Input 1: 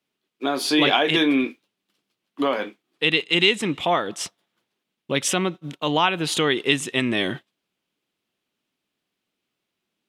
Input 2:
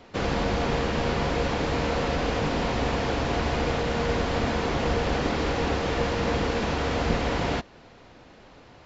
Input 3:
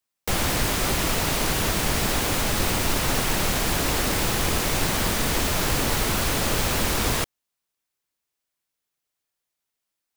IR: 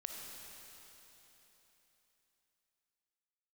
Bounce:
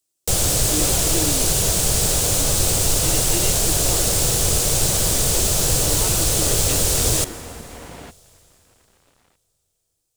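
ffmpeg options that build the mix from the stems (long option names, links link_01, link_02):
-filter_complex "[0:a]equalizer=frequency=330:width=3.7:gain=13.5,volume=-16.5dB[link_01];[1:a]acompressor=threshold=-33dB:ratio=6,aeval=exprs='sgn(val(0))*max(abs(val(0))-0.00398,0)':channel_layout=same,adelay=500,volume=-0.5dB[link_02];[2:a]equalizer=frequency=125:width_type=o:width=1:gain=4,equalizer=frequency=250:width_type=o:width=1:gain=-11,equalizer=frequency=500:width_type=o:width=1:gain=4,equalizer=frequency=1000:width_type=o:width=1:gain=-8,equalizer=frequency=2000:width_type=o:width=1:gain=-10,equalizer=frequency=8000:width_type=o:width=1:gain=9,volume=2.5dB,asplit=2[link_03][link_04];[link_04]volume=-11dB[link_05];[3:a]atrim=start_sample=2205[link_06];[link_05][link_06]afir=irnorm=-1:irlink=0[link_07];[link_01][link_02][link_03][link_07]amix=inputs=4:normalize=0"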